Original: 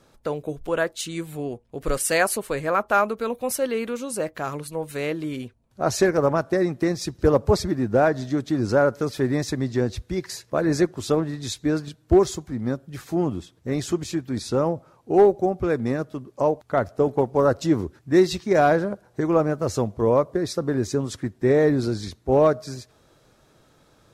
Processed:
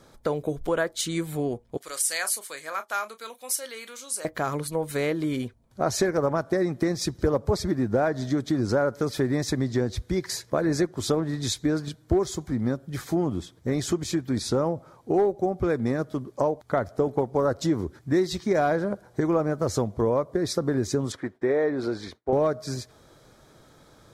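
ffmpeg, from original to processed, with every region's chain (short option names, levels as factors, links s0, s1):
-filter_complex "[0:a]asettb=1/sr,asplit=3[s0][s1][s2];[s0]atrim=end=1.774[s3];[s1]atrim=start=1.77:end=4.25,asetpts=PTS-STARTPTS,afade=t=in:d=0.004:c=qsin,afade=t=out:st=2.476:d=0.004:c=qsin,bandpass=f=7900:t=q:w=0.52,asplit=2[s4][s5];[s5]adelay=32,volume=0.251[s6];[s4][s6]amix=inputs=2:normalize=0,atrim=end_sample=109368[s7];[s2]atrim=start=4.246[s8];[s3][s7]acrossfade=d=0.004:c1=hsin:c2=qsin[s9];[s9][s8]acrossfade=d=0.004:c1=qsin:c2=hsin,asettb=1/sr,asplit=3[s10][s11][s12];[s10]atrim=end=21.124[s13];[s11]atrim=start=21.12:end=22.33,asetpts=PTS-STARTPTS,afade=t=in:d=0.004:c=qsin,afade=t=out:st=1.206:d=0.004:c=qsin,bass=f=250:g=-15,treble=f=4000:g=-14,agate=range=0.0224:threshold=0.00158:ratio=3:release=100:detection=peak[s14];[s12]atrim=start=22.326[s15];[s13][s14]acrossfade=d=0.004:c1=hsin:c2=qsin[s16];[s16][s15]acrossfade=d=0.004:c1=qsin:c2=hsin,acompressor=threshold=0.0501:ratio=3,bandreject=f=2700:w=7.1,volume=1.5"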